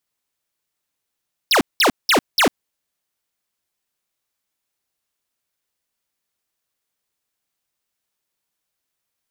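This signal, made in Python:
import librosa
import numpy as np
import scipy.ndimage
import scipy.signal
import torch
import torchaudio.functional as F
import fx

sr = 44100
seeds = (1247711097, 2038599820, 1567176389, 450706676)

y = fx.laser_zaps(sr, level_db=-14, start_hz=5800.0, end_hz=200.0, length_s=0.1, wave='square', shots=4, gap_s=0.19)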